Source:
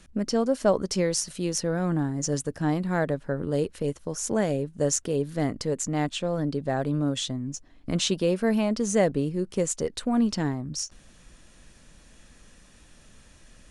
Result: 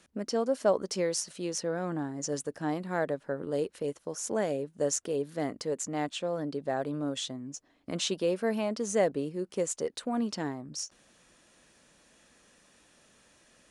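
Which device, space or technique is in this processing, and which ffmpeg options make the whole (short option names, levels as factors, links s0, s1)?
filter by subtraction: -filter_complex "[0:a]asettb=1/sr,asplit=3[s0][s1][s2];[s0]atrim=end=1.224[s3];[s1]atrim=start=1.22:end=2.29,asetpts=PTS-STARTPTS,afade=t=in:d=0.004:c=qsin,afade=t=out:st=1.066:d=0.004:c=qsin,lowpass=9600[s4];[s2]atrim=start=2.286[s5];[s3][s4]acrossfade=d=0.004:c1=hsin:c2=qsin[s6];[s6][s5]acrossfade=d=0.004:c1=qsin:c2=hsin,asplit=2[s7][s8];[s8]lowpass=490,volume=-1[s9];[s7][s9]amix=inputs=2:normalize=0,volume=0.562"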